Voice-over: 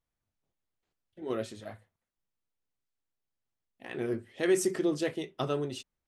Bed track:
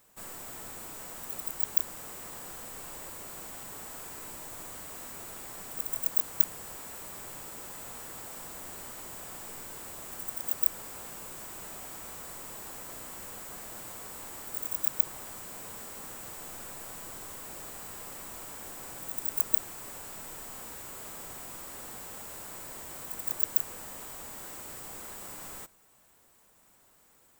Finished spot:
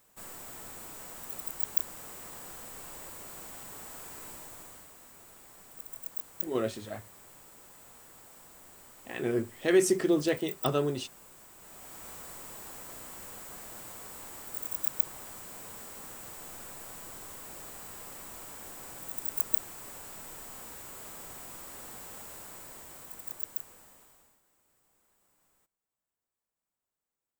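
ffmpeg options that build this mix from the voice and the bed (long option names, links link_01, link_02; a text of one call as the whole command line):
ffmpeg -i stem1.wav -i stem2.wav -filter_complex "[0:a]adelay=5250,volume=3dB[link_01];[1:a]volume=6.5dB,afade=type=out:start_time=4.3:duration=0.65:silence=0.375837,afade=type=in:start_time=11.58:duration=0.51:silence=0.375837,afade=type=out:start_time=22.2:duration=2.21:silence=0.0473151[link_02];[link_01][link_02]amix=inputs=2:normalize=0" out.wav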